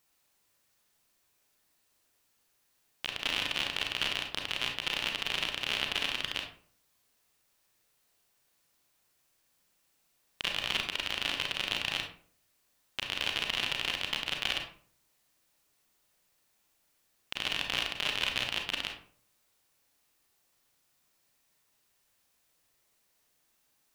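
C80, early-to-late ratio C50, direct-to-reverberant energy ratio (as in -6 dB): 11.5 dB, 6.0 dB, 2.5 dB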